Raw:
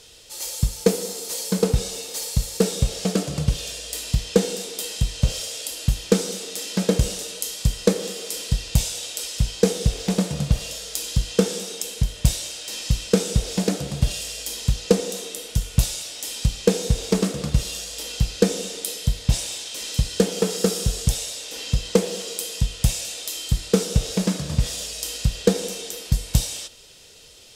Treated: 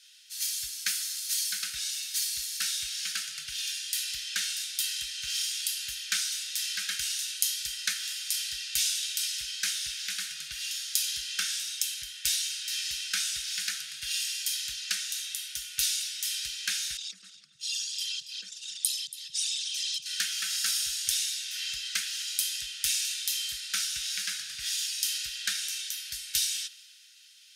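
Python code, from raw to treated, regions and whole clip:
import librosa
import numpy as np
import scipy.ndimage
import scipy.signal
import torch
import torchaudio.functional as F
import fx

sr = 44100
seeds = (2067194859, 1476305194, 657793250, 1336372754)

y = fx.chain(x, sr, fx.envelope_sharpen(power=2.0),
    fx.cheby1_highpass(hz=160.0, order=3),
    fx.echo_feedback(ms=281, feedback_pct=27, wet_db=-12.0), at=(16.97, 20.06))
y = scipy.signal.sosfilt(scipy.signal.ellip(4, 1.0, 40, 1500.0, 'highpass', fs=sr, output='sos'), y)
y = fx.notch(y, sr, hz=7600.0, q=8.0)
y = fx.band_widen(y, sr, depth_pct=40)
y = y * librosa.db_to_amplitude(1.0)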